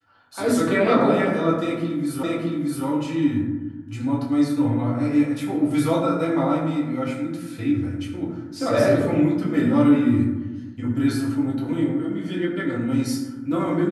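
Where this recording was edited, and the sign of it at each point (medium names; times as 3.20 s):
2.23 s: repeat of the last 0.62 s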